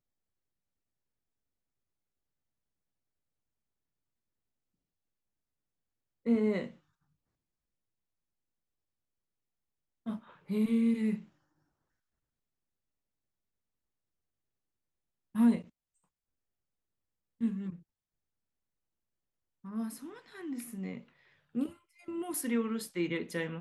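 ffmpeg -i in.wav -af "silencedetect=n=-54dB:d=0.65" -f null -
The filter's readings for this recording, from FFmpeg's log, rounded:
silence_start: 0.00
silence_end: 6.25 | silence_duration: 6.25
silence_start: 6.77
silence_end: 10.06 | silence_duration: 3.29
silence_start: 11.28
silence_end: 15.35 | silence_duration: 4.06
silence_start: 15.69
silence_end: 17.41 | silence_duration: 1.71
silence_start: 17.82
silence_end: 19.64 | silence_duration: 1.83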